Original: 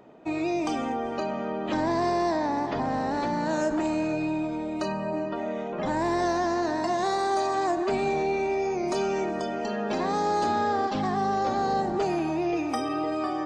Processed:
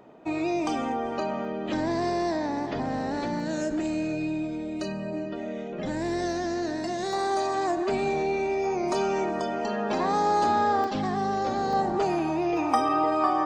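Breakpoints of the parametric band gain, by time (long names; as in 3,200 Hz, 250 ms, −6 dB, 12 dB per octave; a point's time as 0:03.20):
parametric band 1,000 Hz 0.93 octaves
+1.5 dB
from 0:01.45 −6 dB
from 0:03.40 −13 dB
from 0:07.13 −2 dB
from 0:08.64 +4 dB
from 0:10.84 −3 dB
from 0:11.73 +3.5 dB
from 0:12.57 +12.5 dB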